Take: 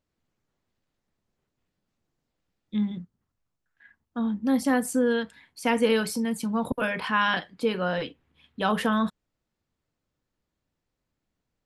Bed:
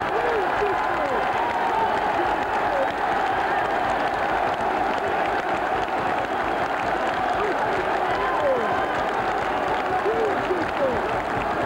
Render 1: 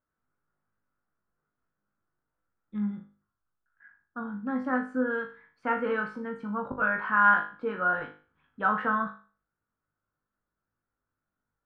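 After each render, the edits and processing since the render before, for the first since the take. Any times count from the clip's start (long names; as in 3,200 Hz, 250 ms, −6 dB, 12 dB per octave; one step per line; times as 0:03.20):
low-pass with resonance 1,400 Hz, resonance Q 5.3
tuned comb filter 51 Hz, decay 0.39 s, harmonics all, mix 90%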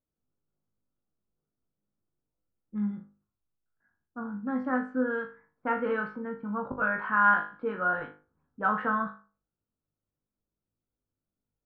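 low-pass that shuts in the quiet parts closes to 560 Hz, open at −24 dBFS
high-shelf EQ 2,600 Hz −6.5 dB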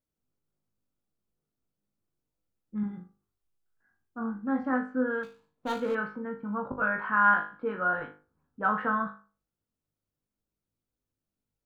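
0:02.81–0:04.73: flutter between parallel walls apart 3.8 metres, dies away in 0.23 s
0:05.23–0:05.95: running median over 25 samples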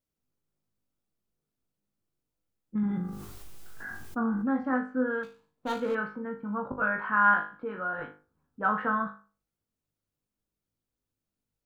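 0:02.75–0:04.55: envelope flattener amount 70%
0:07.53–0:07.99: downward compressor 1.5 to 1, threshold −37 dBFS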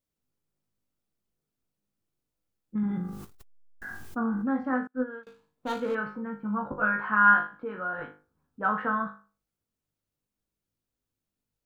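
0:03.24–0:03.82: saturating transformer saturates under 110 Hz
0:04.87–0:05.27: expander for the loud parts 2.5 to 1, over −46 dBFS
0:06.05–0:07.47: double-tracking delay 14 ms −4 dB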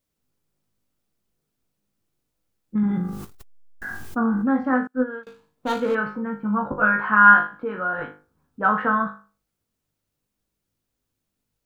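level +7 dB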